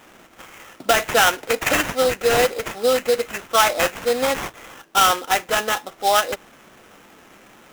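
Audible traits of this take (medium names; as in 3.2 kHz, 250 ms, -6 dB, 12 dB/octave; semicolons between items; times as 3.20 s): aliases and images of a low sample rate 4.5 kHz, jitter 20%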